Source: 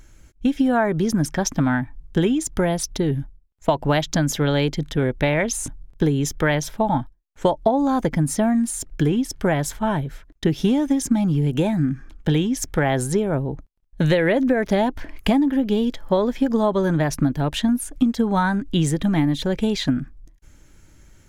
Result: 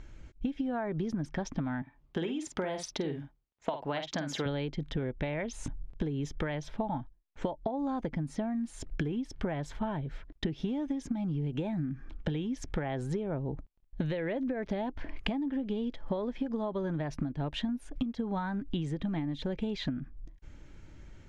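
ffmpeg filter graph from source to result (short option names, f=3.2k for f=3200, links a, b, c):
-filter_complex "[0:a]asettb=1/sr,asplit=3[a][b][c];[a]atrim=end=1.824[d];[b]atrim=start=1.82:end=4.46,asetpts=PTS-STARTPTS,afade=t=in:d=0.004:c=qsin,afade=t=out:st=2.636:d=0.004:c=qsin,highpass=f=560:p=1,asplit=2[e][f];[f]adelay=49,volume=-8dB[g];[e][g]amix=inputs=2:normalize=0,atrim=end_sample=116424[h];[c]atrim=start=4.456[i];[d][h]acrossfade=d=0.004:c1=hsin:c2=qsin[j];[j][i]acrossfade=d=0.004:c1=qsin:c2=hsin,lowpass=3.4k,equalizer=f=1.5k:w=1.5:g=-3,acompressor=threshold=-30dB:ratio=12"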